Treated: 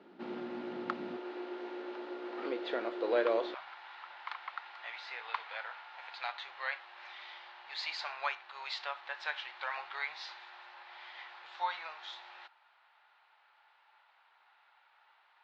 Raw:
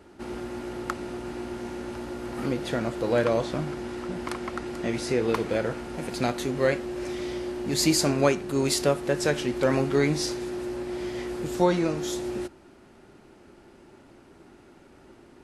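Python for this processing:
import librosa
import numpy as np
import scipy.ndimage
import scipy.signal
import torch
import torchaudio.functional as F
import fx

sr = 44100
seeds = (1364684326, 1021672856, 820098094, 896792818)

y = fx.ellip_bandpass(x, sr, low_hz=fx.steps((0.0, 180.0), (1.16, 360.0), (3.53, 850.0)), high_hz=3900.0, order=3, stop_db=50)
y = y * librosa.db_to_amplitude(-5.0)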